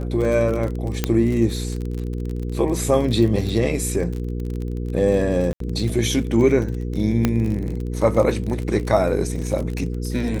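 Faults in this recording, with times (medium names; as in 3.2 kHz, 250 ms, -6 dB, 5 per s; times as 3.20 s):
crackle 34 per s -26 dBFS
hum 60 Hz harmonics 8 -26 dBFS
1.04 s: pop -5 dBFS
5.53–5.60 s: dropout 73 ms
7.25 s: pop -5 dBFS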